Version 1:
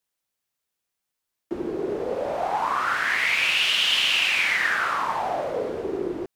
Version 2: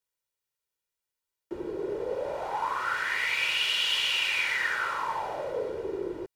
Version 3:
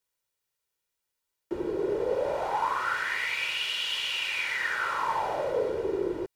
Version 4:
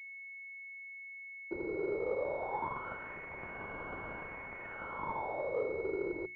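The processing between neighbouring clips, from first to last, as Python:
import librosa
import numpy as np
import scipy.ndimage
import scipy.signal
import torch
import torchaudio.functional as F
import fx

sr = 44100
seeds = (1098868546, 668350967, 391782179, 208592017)

y1 = x + 0.56 * np.pad(x, (int(2.1 * sr / 1000.0), 0))[:len(x)]
y1 = y1 * 10.0 ** (-7.0 / 20.0)
y2 = fx.rider(y1, sr, range_db=4, speed_s=0.5)
y3 = fx.hum_notches(y2, sr, base_hz=60, count=6)
y3 = fx.pwm(y3, sr, carrier_hz=2200.0)
y3 = y3 * 10.0 ** (-6.5 / 20.0)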